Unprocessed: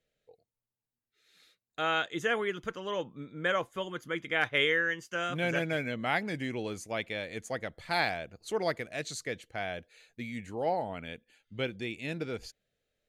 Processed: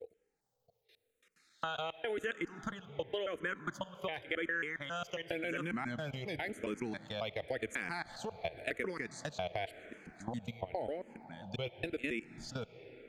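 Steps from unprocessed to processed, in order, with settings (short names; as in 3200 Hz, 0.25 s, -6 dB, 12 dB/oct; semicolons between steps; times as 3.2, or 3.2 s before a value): slices in reverse order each 0.136 s, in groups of 3; level quantiser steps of 19 dB; on a send at -18 dB: reverb RT60 4.7 s, pre-delay 25 ms; on the sum: compressor, threshold -43 dBFS, peak gain reduction 9.5 dB; endless phaser -0.92 Hz; gain +11 dB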